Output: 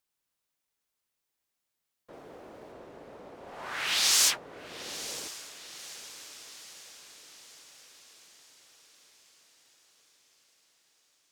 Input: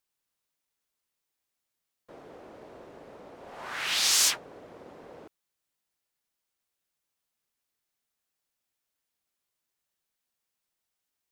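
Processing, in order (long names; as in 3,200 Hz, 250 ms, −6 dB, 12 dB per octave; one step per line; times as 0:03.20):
0:02.13–0:02.72: high-shelf EQ 7,900 Hz +5.5 dB
feedback delay with all-pass diffusion 957 ms, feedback 57%, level −14 dB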